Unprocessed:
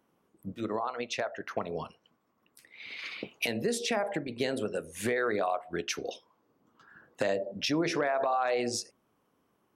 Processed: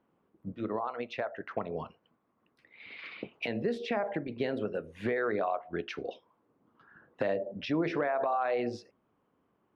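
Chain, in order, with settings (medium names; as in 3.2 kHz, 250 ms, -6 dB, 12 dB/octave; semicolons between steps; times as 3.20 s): distance through air 350 m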